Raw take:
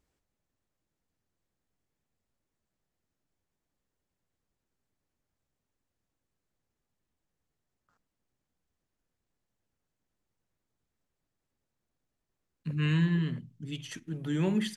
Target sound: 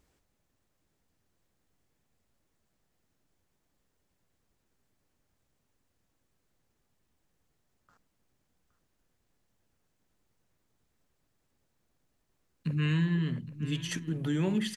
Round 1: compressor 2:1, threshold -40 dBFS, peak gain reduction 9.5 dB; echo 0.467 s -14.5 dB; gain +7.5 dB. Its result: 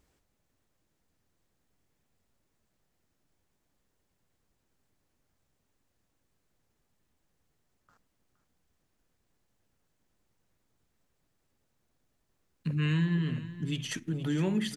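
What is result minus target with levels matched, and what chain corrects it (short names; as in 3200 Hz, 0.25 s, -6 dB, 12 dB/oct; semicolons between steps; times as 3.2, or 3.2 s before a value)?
echo 0.35 s early
compressor 2:1, threshold -40 dBFS, peak gain reduction 9.5 dB; echo 0.817 s -14.5 dB; gain +7.5 dB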